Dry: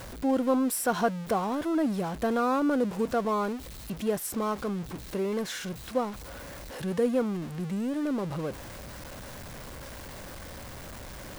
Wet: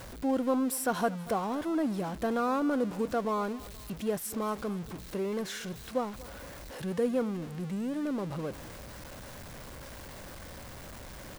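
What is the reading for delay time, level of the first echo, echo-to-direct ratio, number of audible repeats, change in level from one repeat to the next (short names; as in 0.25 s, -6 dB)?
0.236 s, -20.0 dB, -19.0 dB, 2, -6.5 dB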